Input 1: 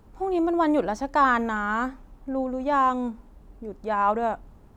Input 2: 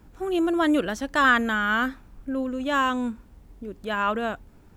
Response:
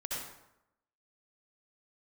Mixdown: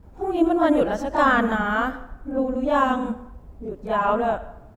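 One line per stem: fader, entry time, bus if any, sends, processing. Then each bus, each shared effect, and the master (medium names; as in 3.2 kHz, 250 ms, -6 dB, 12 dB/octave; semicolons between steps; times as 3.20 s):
-5.0 dB, 0.00 s, no send, phase randomisation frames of 50 ms; bass shelf 430 Hz +11 dB
-8.0 dB, 28 ms, polarity flipped, send -14 dB, peaking EQ 660 Hz +14.5 dB 1.5 oct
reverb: on, RT60 0.85 s, pre-delay 58 ms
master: none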